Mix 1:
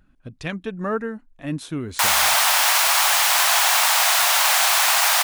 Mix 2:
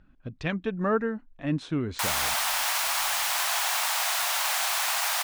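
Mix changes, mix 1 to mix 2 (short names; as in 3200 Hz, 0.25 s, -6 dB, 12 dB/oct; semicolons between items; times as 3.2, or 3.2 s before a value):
speech: add air absorption 130 m; background -9.5 dB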